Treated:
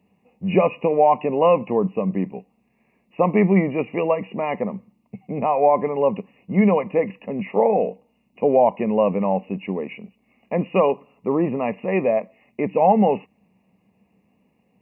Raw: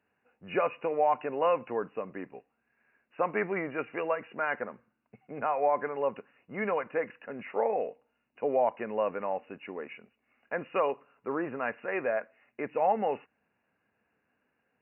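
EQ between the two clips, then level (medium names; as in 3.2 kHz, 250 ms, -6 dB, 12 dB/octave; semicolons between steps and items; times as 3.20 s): Butterworth band-stop 1.5 kHz, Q 1.6; peaking EQ 190 Hz +13 dB 0.32 oct; bass shelf 270 Hz +7.5 dB; +9.0 dB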